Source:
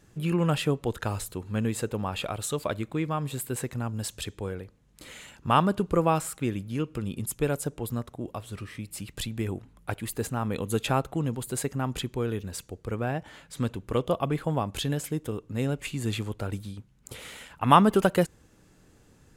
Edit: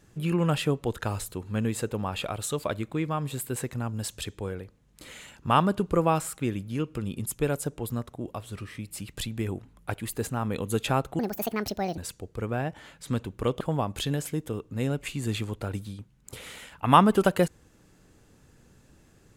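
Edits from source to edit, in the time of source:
0:11.19–0:12.47: play speed 163%
0:14.10–0:14.39: remove

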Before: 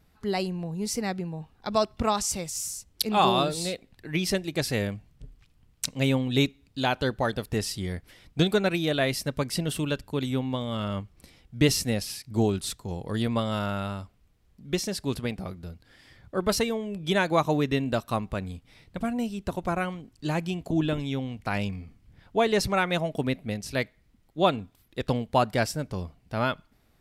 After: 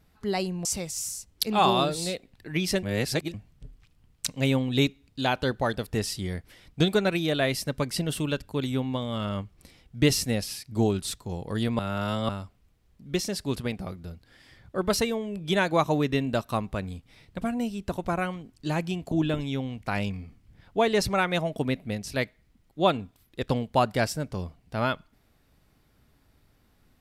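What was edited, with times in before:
0:00.65–0:02.24: remove
0:04.42–0:04.93: reverse
0:13.38–0:13.88: reverse

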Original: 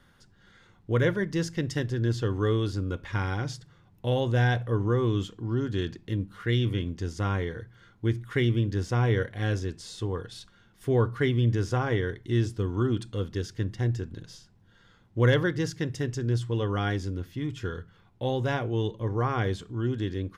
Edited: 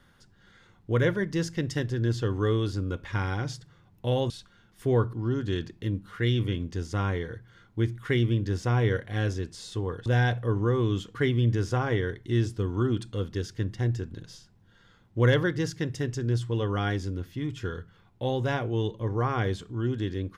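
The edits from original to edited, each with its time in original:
0:04.30–0:05.39: swap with 0:10.32–0:11.15

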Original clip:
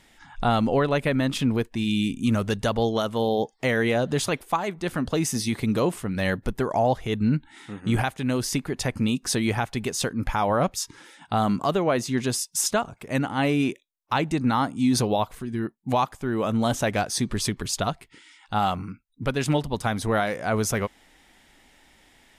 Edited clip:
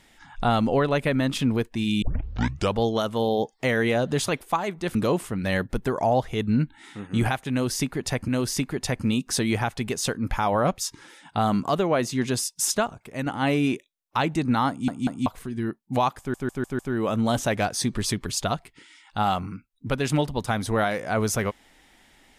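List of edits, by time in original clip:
0:02.02: tape start 0.76 s
0:04.95–0:05.68: remove
0:08.24–0:09.01: repeat, 2 plays
0:12.74–0:13.22: fade out linear, to −6 dB
0:14.65: stutter in place 0.19 s, 3 plays
0:16.15: stutter 0.15 s, 5 plays

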